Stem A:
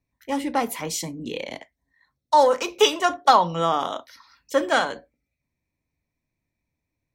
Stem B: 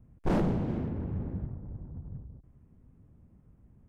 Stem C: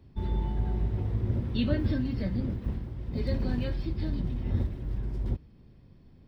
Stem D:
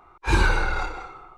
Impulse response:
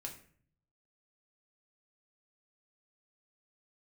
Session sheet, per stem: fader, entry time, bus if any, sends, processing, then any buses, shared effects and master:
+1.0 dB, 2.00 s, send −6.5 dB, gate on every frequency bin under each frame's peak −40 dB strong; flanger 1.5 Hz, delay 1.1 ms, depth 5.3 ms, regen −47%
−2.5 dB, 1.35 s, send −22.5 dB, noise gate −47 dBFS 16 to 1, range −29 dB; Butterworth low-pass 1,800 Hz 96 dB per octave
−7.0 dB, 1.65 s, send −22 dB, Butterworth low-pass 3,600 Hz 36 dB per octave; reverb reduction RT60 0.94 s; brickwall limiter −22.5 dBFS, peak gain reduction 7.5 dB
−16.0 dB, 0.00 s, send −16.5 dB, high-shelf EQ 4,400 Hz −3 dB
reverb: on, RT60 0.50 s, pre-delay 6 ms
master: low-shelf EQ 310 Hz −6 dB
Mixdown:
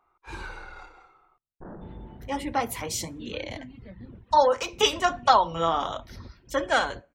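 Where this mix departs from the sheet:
stem B −2.5 dB → −12.5 dB
reverb return −8.5 dB

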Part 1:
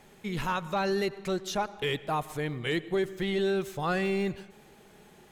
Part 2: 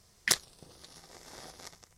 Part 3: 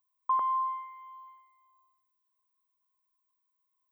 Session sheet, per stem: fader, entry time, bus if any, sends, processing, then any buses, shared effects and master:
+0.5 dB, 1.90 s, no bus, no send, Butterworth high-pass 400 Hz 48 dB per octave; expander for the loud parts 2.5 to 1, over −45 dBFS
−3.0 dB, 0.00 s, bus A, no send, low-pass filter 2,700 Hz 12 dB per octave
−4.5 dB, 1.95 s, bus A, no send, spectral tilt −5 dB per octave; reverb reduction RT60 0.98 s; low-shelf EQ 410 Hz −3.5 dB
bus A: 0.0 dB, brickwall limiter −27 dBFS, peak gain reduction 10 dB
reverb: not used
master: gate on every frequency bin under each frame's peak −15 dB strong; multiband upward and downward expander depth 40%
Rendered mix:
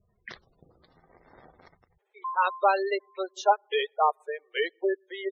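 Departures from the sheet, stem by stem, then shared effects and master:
stem 1 +0.5 dB → +11.5 dB
master: missing multiband upward and downward expander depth 40%

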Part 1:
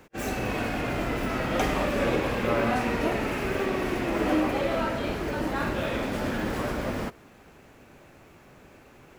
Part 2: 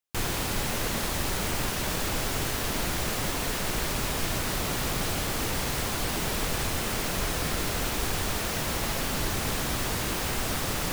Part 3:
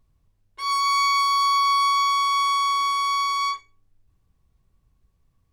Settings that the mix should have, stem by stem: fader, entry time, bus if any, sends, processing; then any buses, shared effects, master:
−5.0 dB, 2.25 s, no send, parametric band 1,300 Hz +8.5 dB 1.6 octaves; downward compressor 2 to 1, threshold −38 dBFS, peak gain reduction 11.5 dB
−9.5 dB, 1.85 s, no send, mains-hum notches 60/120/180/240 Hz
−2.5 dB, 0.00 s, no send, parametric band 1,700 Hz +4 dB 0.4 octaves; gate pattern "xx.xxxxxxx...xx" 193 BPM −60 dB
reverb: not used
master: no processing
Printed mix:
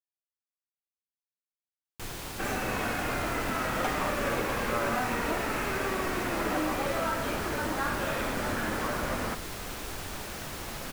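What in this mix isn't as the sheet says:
stem 1 −5.0 dB → +2.5 dB
stem 3: muted

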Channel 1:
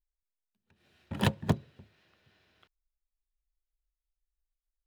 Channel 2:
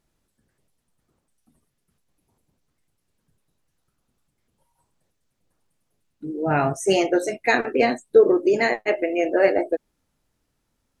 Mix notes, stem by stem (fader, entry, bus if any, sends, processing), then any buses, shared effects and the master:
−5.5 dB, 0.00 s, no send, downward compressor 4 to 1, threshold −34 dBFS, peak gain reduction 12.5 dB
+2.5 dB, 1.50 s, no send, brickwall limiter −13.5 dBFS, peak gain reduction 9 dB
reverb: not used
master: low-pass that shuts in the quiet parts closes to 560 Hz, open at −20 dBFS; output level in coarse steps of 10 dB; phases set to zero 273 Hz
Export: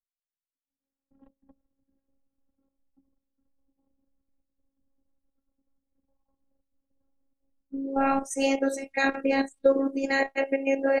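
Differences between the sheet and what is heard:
stem 1 −5.5 dB → −15.5 dB
stem 2: missing brickwall limiter −13.5 dBFS, peak gain reduction 9 dB

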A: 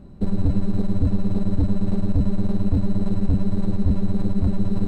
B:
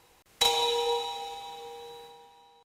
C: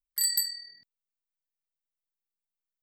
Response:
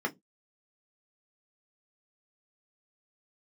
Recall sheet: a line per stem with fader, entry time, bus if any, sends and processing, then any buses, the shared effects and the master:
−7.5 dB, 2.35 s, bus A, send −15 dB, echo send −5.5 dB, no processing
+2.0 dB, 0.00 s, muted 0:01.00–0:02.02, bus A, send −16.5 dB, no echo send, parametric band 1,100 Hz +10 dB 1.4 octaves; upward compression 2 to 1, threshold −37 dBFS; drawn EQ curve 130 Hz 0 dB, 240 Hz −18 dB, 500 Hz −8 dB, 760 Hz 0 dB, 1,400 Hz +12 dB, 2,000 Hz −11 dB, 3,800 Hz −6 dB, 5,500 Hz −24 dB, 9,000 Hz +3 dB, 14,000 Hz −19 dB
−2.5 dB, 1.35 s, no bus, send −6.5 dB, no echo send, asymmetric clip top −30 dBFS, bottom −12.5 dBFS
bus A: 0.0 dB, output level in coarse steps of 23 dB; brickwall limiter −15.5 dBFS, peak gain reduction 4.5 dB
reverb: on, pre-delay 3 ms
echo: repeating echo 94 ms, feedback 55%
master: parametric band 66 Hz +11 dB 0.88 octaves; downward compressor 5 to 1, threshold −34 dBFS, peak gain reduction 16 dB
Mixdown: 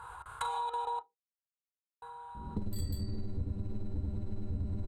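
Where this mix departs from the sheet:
stem A −7.5 dB → −1.0 dB
stem C: entry 1.35 s → 2.55 s

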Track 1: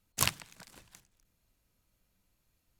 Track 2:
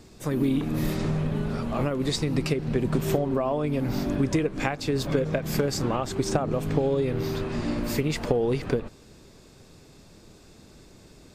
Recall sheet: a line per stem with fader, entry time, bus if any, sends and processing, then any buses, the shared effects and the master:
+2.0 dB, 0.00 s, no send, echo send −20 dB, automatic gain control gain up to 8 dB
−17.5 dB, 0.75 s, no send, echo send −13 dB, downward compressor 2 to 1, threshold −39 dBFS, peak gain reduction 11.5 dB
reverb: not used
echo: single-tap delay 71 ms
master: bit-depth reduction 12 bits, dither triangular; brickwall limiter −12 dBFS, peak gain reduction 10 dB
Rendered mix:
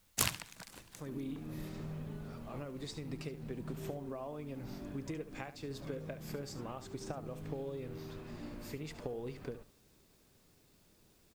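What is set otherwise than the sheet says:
stem 1: missing automatic gain control gain up to 8 dB
stem 2: missing downward compressor 2 to 1, threshold −39 dBFS, peak gain reduction 11.5 dB

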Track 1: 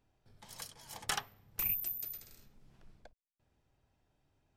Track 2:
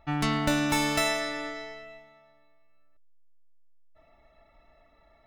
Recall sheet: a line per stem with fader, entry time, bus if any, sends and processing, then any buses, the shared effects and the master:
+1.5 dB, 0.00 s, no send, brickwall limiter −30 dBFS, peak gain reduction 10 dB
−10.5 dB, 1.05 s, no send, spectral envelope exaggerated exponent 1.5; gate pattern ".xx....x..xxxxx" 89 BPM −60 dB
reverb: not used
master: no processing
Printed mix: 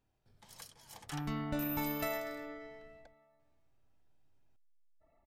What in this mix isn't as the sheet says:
stem 1 +1.5 dB → −4.5 dB
stem 2: missing gate pattern ".xx....x..xxxxx" 89 BPM −60 dB

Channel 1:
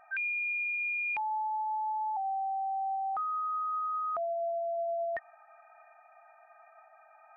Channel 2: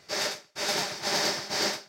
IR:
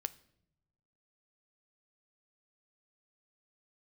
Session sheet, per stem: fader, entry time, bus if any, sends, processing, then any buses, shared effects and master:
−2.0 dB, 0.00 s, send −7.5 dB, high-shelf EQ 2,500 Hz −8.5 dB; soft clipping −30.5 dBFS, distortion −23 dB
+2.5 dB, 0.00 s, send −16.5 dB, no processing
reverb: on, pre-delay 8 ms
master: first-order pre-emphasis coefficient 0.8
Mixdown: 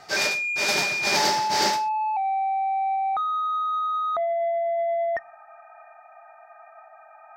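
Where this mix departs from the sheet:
stem 1 −2.0 dB → +8.0 dB
master: missing first-order pre-emphasis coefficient 0.8

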